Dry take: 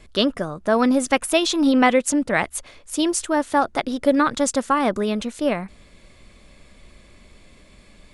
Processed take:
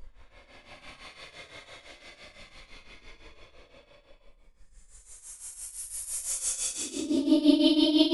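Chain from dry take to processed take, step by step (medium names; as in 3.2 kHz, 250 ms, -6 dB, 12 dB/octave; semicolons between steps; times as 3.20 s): Paulstretch 20×, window 0.05 s, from 2.62 s; tremolo triangle 5.9 Hz, depth 80%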